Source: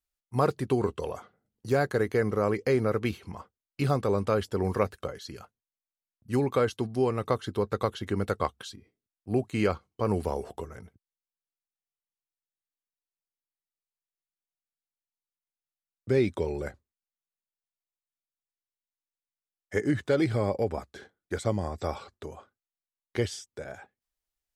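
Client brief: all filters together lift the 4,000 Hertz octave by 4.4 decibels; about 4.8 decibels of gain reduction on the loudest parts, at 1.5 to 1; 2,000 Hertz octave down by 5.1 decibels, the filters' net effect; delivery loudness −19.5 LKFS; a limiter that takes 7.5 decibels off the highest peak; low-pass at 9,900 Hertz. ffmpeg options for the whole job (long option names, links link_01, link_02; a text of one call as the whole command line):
ffmpeg -i in.wav -af "lowpass=9900,equalizer=frequency=2000:width_type=o:gain=-8.5,equalizer=frequency=4000:width_type=o:gain=8,acompressor=threshold=-34dB:ratio=1.5,volume=16dB,alimiter=limit=-6dB:level=0:latency=1" out.wav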